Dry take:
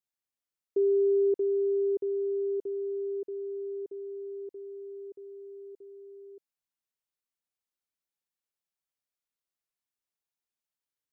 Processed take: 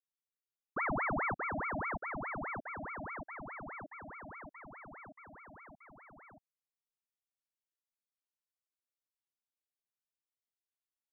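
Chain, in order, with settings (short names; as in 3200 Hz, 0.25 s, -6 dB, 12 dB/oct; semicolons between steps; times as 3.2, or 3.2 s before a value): frequency shift +53 Hz; ring modulator with a swept carrier 1000 Hz, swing 85%, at 4.8 Hz; gain -7 dB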